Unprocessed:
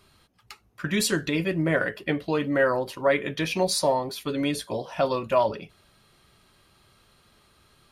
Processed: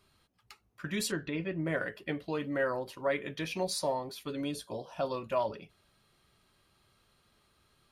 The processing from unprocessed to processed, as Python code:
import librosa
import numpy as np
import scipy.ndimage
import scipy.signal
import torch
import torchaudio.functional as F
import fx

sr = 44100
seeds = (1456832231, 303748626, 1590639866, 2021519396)

y = fx.lowpass(x, sr, hz=2900.0, slope=12, at=(1.11, 1.65), fade=0.02)
y = fx.peak_eq(y, sr, hz=2000.0, db=-10.5, octaves=0.44, at=(4.41, 5.14))
y = y * librosa.db_to_amplitude(-9.0)